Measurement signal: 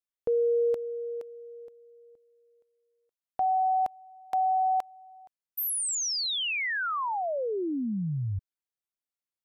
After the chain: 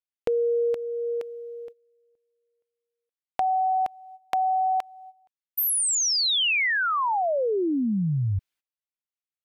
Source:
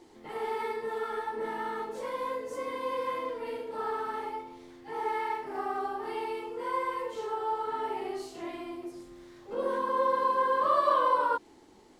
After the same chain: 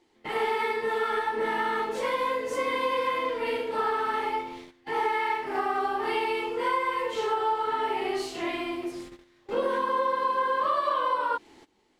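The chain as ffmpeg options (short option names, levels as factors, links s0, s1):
-af "agate=range=0.126:threshold=0.00501:ratio=16:release=221:detection=rms,equalizer=f=2600:w=0.82:g=8,acompressor=threshold=0.0398:ratio=6:attack=12:release=795:knee=1:detection=rms,volume=2.11"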